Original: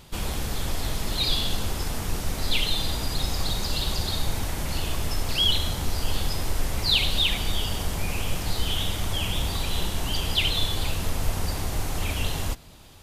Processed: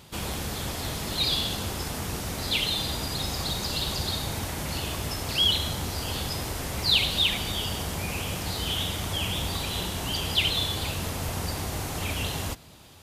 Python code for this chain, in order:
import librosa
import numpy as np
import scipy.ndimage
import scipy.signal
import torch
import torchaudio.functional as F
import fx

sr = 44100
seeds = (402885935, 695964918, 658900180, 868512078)

y = scipy.signal.sosfilt(scipy.signal.butter(2, 74.0, 'highpass', fs=sr, output='sos'), x)